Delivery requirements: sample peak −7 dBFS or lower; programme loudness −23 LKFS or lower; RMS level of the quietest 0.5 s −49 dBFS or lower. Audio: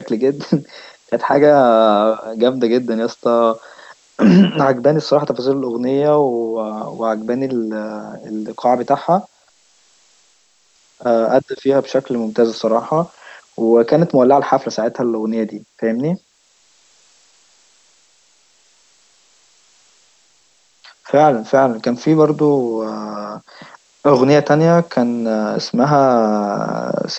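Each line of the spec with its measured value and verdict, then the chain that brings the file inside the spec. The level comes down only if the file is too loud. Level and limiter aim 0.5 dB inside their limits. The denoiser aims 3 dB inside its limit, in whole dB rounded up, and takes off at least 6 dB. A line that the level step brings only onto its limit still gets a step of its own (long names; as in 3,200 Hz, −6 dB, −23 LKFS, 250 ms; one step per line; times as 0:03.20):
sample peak −1.5 dBFS: out of spec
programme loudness −16.0 LKFS: out of spec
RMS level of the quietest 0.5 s −56 dBFS: in spec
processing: level −7.5 dB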